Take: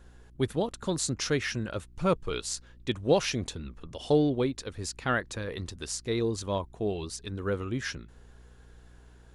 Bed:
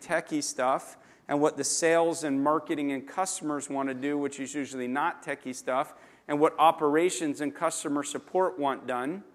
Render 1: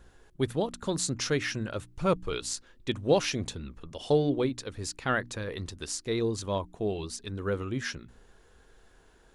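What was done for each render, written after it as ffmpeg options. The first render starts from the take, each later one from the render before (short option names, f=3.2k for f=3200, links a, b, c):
-af "bandreject=f=60:t=h:w=4,bandreject=f=120:t=h:w=4,bandreject=f=180:t=h:w=4,bandreject=f=240:t=h:w=4,bandreject=f=300:t=h:w=4"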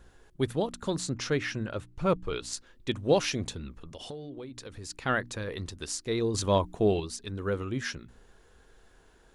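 -filter_complex "[0:a]asettb=1/sr,asplit=3[a][b][c];[a]atrim=end=0.964[d];[b]atrim=start=0.96:end=2.53,asetpts=PTS-STARTPTS,afade=t=in:d=0.004:c=qsin,afade=t=out:st=1.566:d=0.004:c=qsin,highshelf=f=5.3k:g=-9[e];[c]atrim=start=2.526[f];[d][e]acrossfade=d=0.004:c1=hsin:c2=qsin[g];[g][f]acrossfade=d=0.004:c1=qsin:c2=hsin,asplit=3[h][i][j];[h]afade=t=out:st=3.82:d=0.02[k];[i]acompressor=threshold=-38dB:ratio=8:attack=3.2:release=140:knee=1:detection=peak,afade=t=in:st=3.82:d=0.02,afade=t=out:st=4.89:d=0.02[l];[j]afade=t=in:st=4.89:d=0.02[m];[k][l][m]amix=inputs=3:normalize=0,asettb=1/sr,asplit=3[n][o][p];[n]atrim=end=6.344[q];[o]atrim=start=6.34:end=7,asetpts=PTS-STARTPTS,afade=t=in:d=0.004:c=qsin,afade=t=out:st=0.656:d=0.004:c=qsin,acontrast=59[r];[p]atrim=start=6.996[s];[q][r]acrossfade=d=0.004:c1=hsin:c2=qsin[t];[t][s]acrossfade=d=0.004:c1=qsin:c2=hsin"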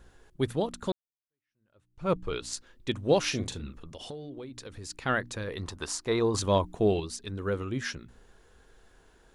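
-filter_complex "[0:a]asettb=1/sr,asplit=3[a][b][c];[a]atrim=end=3.224[d];[b]atrim=start=3.22:end=3.79,asetpts=PTS-STARTPTS,afade=t=in:d=0.004:c=qsin,afade=t=out:st=0.566:d=0.004:c=qsin,asplit=2[e][f];[f]adelay=40,volume=-8.5dB[g];[e][g]amix=inputs=2:normalize=0,atrim=end_sample=25137[h];[c]atrim=start=3.786[i];[d][h]acrossfade=d=0.004:c1=hsin:c2=qsin[j];[j][i]acrossfade=d=0.004:c1=qsin:c2=hsin,asettb=1/sr,asplit=3[k][l][m];[k]atrim=end=5.634[n];[l]atrim=start=5.63:end=6.39,asetpts=PTS-STARTPTS,afade=t=in:d=0.004:c=qsin,afade=t=out:st=0.756:d=0.004:c=qsin,equalizer=f=980:t=o:w=1.3:g=12.5[o];[m]atrim=start=6.386[p];[n][o]acrossfade=d=0.004:c1=hsin:c2=qsin[q];[q][p]acrossfade=d=0.004:c1=qsin:c2=hsin,asplit=2[r][s];[r]atrim=end=0.92,asetpts=PTS-STARTPTS,afade=t=out:st=0.916:d=0.004:c=hsin[t];[s]atrim=start=0.92,asetpts=PTS-STARTPTS,afade=t=in:d=1.2:c=exp[u];[t][u]concat=n=2:v=0:a=1"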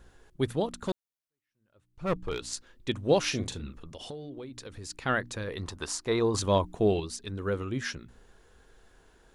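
-filter_complex "[0:a]asettb=1/sr,asplit=3[a][b][c];[a]atrim=end=0.814[d];[b]atrim=start=0.81:end=2.41,asetpts=PTS-STARTPTS,afade=t=in:d=0.004:c=qsin,afade=t=out:st=1.596:d=0.004:c=qsin,aeval=exprs='clip(val(0),-1,0.0473)':c=same[e];[c]atrim=start=2.406[f];[d][e]acrossfade=d=0.004:c1=hsin:c2=qsin[g];[g][f]acrossfade=d=0.004:c1=qsin:c2=hsin"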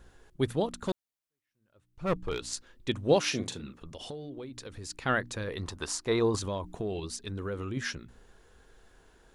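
-filter_complex "[0:a]asettb=1/sr,asplit=3[a][b][c];[a]atrim=end=3.164[d];[b]atrim=start=3.16:end=3.82,asetpts=PTS-STARTPTS,afade=t=in:d=0.004:c=qsin,afade=t=out:st=0.656:d=0.004:c=qsin,highpass=130[e];[c]atrim=start=3.816[f];[d][e]acrossfade=d=0.004:c1=hsin:c2=qsin[g];[g][f]acrossfade=d=0.004:c1=qsin:c2=hsin,asettb=1/sr,asplit=3[h][i][j];[h]atrim=end=6.354[k];[i]atrim=start=6.35:end=7.77,asetpts=PTS-STARTPTS,afade=t=in:d=0.004:c=qsin,afade=t=out:st=1.416:d=0.004:c=qsin,acompressor=threshold=-31dB:ratio=4:attack=3.2:release=140:knee=1:detection=peak[l];[j]atrim=start=7.766[m];[k][l]acrossfade=d=0.004:c1=hsin:c2=qsin[n];[n][m]acrossfade=d=0.004:c1=qsin:c2=hsin"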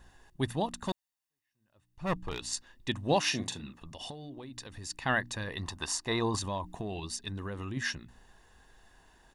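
-af "lowshelf=f=200:g=-6,aecho=1:1:1.1:0.56"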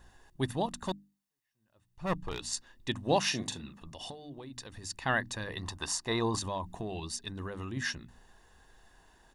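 -af "equalizer=f=2.4k:t=o:w=0.77:g=-2,bandreject=f=50:t=h:w=6,bandreject=f=100:t=h:w=6,bandreject=f=150:t=h:w=6,bandreject=f=200:t=h:w=6,bandreject=f=250:t=h:w=6,bandreject=f=300:t=h:w=6"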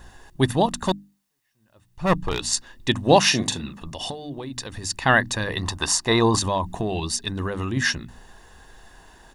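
-af "volume=12dB"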